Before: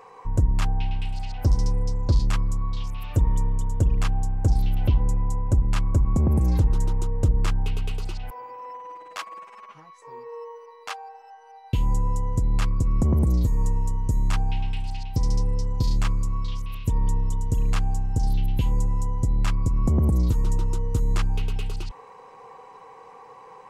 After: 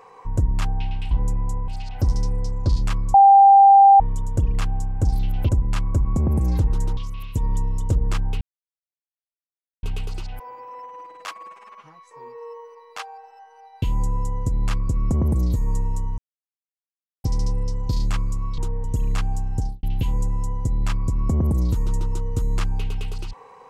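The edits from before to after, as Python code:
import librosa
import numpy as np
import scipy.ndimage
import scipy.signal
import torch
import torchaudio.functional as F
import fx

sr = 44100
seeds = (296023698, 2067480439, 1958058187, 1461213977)

y = fx.studio_fade_out(x, sr, start_s=18.14, length_s=0.27)
y = fx.edit(y, sr, fx.bleep(start_s=2.57, length_s=0.86, hz=791.0, db=-7.0),
    fx.move(start_s=4.92, length_s=0.57, to_s=1.11),
    fx.swap(start_s=6.97, length_s=0.26, other_s=16.49, other_length_s=0.93),
    fx.insert_silence(at_s=7.74, length_s=1.42),
    fx.silence(start_s=14.09, length_s=1.06), tone=tone)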